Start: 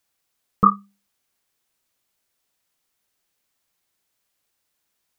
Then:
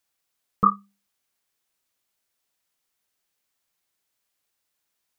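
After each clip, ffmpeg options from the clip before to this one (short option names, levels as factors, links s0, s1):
-af "lowshelf=f=470:g=-3,volume=0.708"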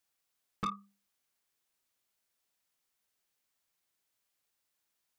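-af "acompressor=threshold=0.0794:ratio=3,asoftclip=type=tanh:threshold=0.0562,volume=0.631"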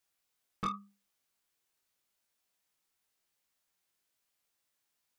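-af "flanger=delay=18.5:depth=3.2:speed=0.9,volume=1.5"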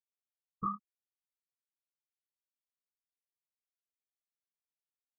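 -filter_complex "[0:a]afftfilt=real='re*gte(hypot(re,im),0.0447)':imag='im*gte(hypot(re,im),0.0447)':win_size=1024:overlap=0.75,asuperstop=centerf=1600:order=4:qfactor=2.9,asplit=2[s0][s1];[s1]adelay=24,volume=0.282[s2];[s0][s2]amix=inputs=2:normalize=0,volume=1.12"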